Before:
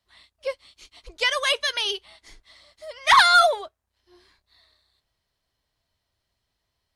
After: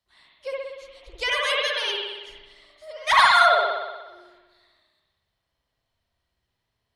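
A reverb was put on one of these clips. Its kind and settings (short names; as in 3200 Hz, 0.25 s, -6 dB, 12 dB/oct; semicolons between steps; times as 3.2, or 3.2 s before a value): spring tank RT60 1.2 s, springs 59 ms, chirp 65 ms, DRR -4 dB; gain -5 dB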